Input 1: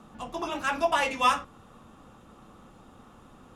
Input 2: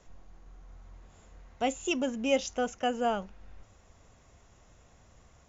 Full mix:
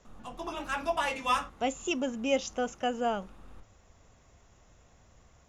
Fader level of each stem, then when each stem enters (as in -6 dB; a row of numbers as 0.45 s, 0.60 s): -5.0 dB, -1.0 dB; 0.05 s, 0.00 s